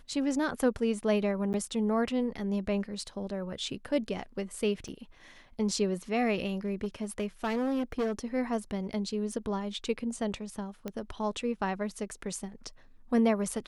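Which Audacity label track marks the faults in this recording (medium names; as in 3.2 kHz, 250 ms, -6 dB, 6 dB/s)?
1.530000	1.540000	dropout 9.5 ms
4.880000	4.890000	dropout 5.9 ms
6.650000	8.120000	clipped -26 dBFS
9.320000	9.320000	dropout 3 ms
10.880000	10.880000	pop -22 dBFS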